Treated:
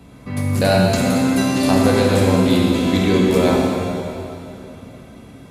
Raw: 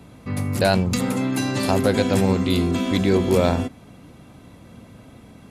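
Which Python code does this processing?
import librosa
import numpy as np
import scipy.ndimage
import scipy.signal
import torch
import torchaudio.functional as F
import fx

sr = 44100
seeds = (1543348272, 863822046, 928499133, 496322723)

y = fx.rev_plate(x, sr, seeds[0], rt60_s=2.9, hf_ratio=0.95, predelay_ms=0, drr_db=-2.5)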